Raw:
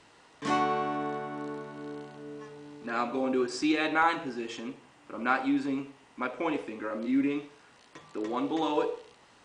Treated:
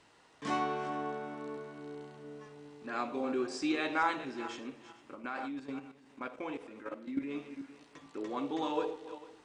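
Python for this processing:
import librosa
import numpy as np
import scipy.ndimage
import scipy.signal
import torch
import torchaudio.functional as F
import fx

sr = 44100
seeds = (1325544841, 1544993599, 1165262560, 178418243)

y = fx.reverse_delay_fb(x, sr, ms=224, feedback_pct=44, wet_db=-13)
y = fx.level_steps(y, sr, step_db=11, at=(5.14, 7.33), fade=0.02)
y = y * 10.0 ** (-5.5 / 20.0)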